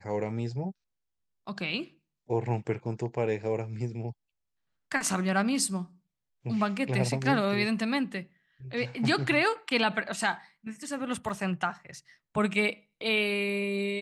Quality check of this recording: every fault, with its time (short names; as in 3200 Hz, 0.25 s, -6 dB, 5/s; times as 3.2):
11.29 gap 3.5 ms